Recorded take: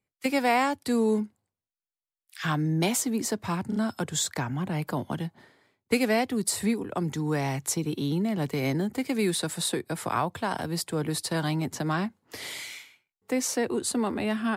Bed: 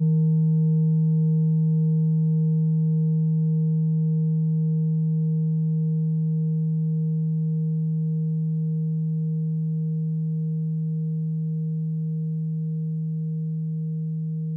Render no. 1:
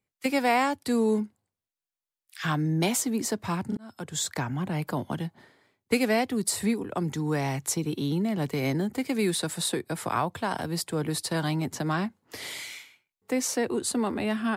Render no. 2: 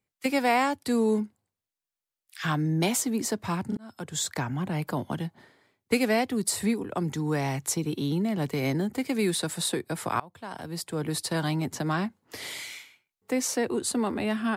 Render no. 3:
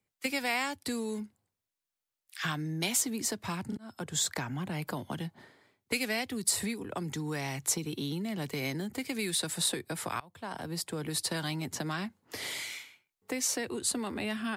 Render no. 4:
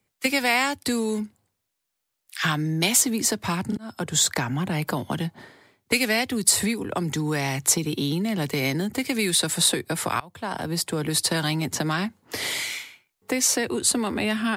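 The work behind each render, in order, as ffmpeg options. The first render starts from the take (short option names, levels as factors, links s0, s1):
-filter_complex "[0:a]asplit=2[s0][s1];[s0]atrim=end=3.77,asetpts=PTS-STARTPTS,afade=t=out:st=3.766:d=0.004:c=hsin[s2];[s1]atrim=start=3.77,asetpts=PTS-STARTPTS,afade=t=in:d=0.55[s3];[s2][s3]concat=n=2:v=0:a=1"
-filter_complex "[0:a]asplit=2[s0][s1];[s0]atrim=end=10.2,asetpts=PTS-STARTPTS,afade=t=out:st=10.196:d=0.004:c=hsin:silence=0.0707946[s2];[s1]atrim=start=10.2,asetpts=PTS-STARTPTS,afade=t=in:d=0.98:silence=0.0707946[s3];[s2][s3]concat=n=2:v=0:a=1"
-filter_complex "[0:a]acrossover=split=110|1800[s0][s1][s2];[s0]alimiter=level_in=15.8:limit=0.0631:level=0:latency=1,volume=0.0631[s3];[s1]acompressor=threshold=0.02:ratio=6[s4];[s3][s4][s2]amix=inputs=3:normalize=0"
-af "volume=2.99"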